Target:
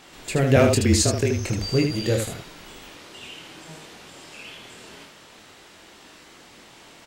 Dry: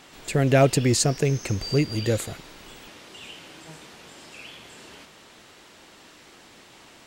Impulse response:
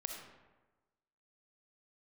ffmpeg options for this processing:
-filter_complex "[0:a]asettb=1/sr,asplit=3[link_01][link_02][link_03];[link_01]atrim=end=0.564[link_04];[link_02]atrim=start=0.56:end=1.41,asetpts=PTS-STARTPTS,afade=type=in:duration=0.004:curve=qsin,afade=type=out:start_time=0.846:duration=0.004:curve=qsin,afreqshift=-32[link_05];[link_03]atrim=start=1.406[link_06];[link_04][link_05]acrossfade=duration=0.004:curve1=hsin:curve2=qsin[link_07];[link_07][link_06]acrossfade=duration=0.004:curve1=qsin:curve2=hsin,aecho=1:1:24|78:0.531|0.531"

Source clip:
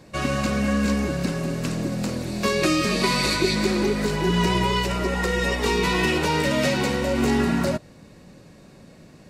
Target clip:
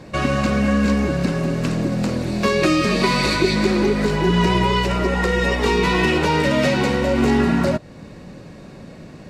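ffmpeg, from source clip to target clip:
ffmpeg -i in.wav -filter_complex "[0:a]lowpass=frequency=3600:poles=1,asplit=2[link_01][link_02];[link_02]acompressor=threshold=-33dB:ratio=6,volume=1dB[link_03];[link_01][link_03]amix=inputs=2:normalize=0,volume=2.5dB" out.wav

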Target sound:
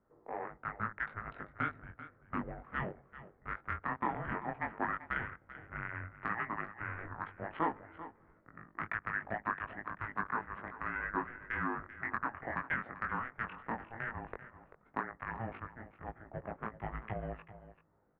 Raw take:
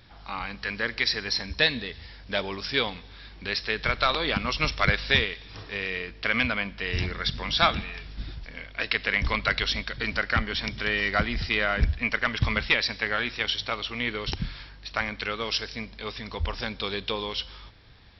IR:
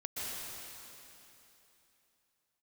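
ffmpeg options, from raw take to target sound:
-filter_complex "[0:a]adynamicsmooth=sensitivity=1.5:basefreq=620,highpass=frequency=490:width_type=q:width=0.5412,highpass=frequency=490:width_type=q:width=1.307,lowpass=frequency=2200:width_type=q:width=0.5176,lowpass=frequency=2200:width_type=q:width=0.7071,lowpass=frequency=2200:width_type=q:width=1.932,afreqshift=-350,acompressor=threshold=-35dB:ratio=2,flanger=delay=18.5:depth=3.9:speed=0.12,asplit=2[link_01][link_02];[link_02]aecho=0:1:389:0.188[link_03];[link_01][link_03]amix=inputs=2:normalize=0,volume=1.5dB"

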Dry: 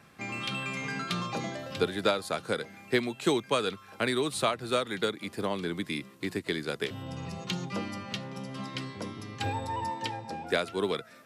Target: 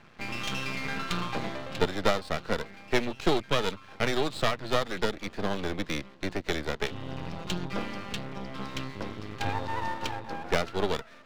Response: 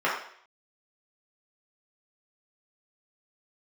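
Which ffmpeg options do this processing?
-af "lowpass=frequency=4400:width=0.5412,lowpass=frequency=4400:width=1.3066,aeval=exprs='max(val(0),0)':channel_layout=same,volume=5.5dB"

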